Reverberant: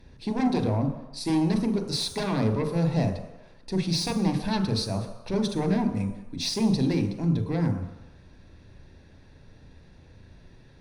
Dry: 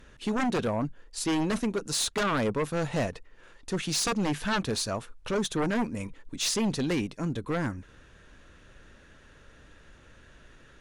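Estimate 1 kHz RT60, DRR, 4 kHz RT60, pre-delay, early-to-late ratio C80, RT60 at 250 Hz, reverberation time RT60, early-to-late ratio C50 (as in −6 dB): 1.1 s, 6.0 dB, 1.0 s, 34 ms, 10.0 dB, 0.80 s, 1.0 s, 8.5 dB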